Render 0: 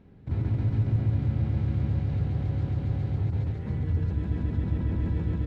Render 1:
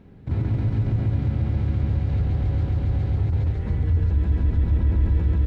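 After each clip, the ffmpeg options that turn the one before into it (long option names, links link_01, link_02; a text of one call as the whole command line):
ffmpeg -i in.wav -filter_complex "[0:a]asubboost=boost=8:cutoff=52,asplit=2[link_01][link_02];[link_02]alimiter=limit=-22dB:level=0:latency=1,volume=3dB[link_03];[link_01][link_03]amix=inputs=2:normalize=0,volume=-2dB" out.wav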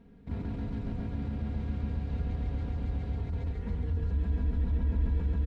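ffmpeg -i in.wav -af "aecho=1:1:4.3:0.75,volume=-9dB" out.wav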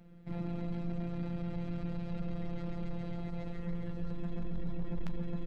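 ffmpeg -i in.wav -af "afftfilt=real='hypot(re,im)*cos(PI*b)':imag='0':win_size=1024:overlap=0.75,aeval=exprs='0.0596*(cos(1*acos(clip(val(0)/0.0596,-1,1)))-cos(1*PI/2))+0.0133*(cos(3*acos(clip(val(0)/0.0596,-1,1)))-cos(3*PI/2))+0.0133*(cos(5*acos(clip(val(0)/0.0596,-1,1)))-cos(5*PI/2))+0.00473*(cos(7*acos(clip(val(0)/0.0596,-1,1)))-cos(7*PI/2))':channel_layout=same,volume=5dB" out.wav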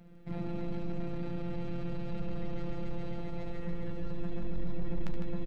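ffmpeg -i in.wav -af "aecho=1:1:72.89|154.5:0.355|0.398,volume=2dB" out.wav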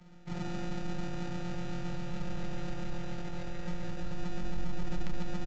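ffmpeg -i in.wav -filter_complex "[0:a]acrossover=split=140|620|760[link_01][link_02][link_03][link_04];[link_02]acrusher=samples=41:mix=1:aa=0.000001[link_05];[link_01][link_05][link_03][link_04]amix=inputs=4:normalize=0,aresample=16000,aresample=44100" out.wav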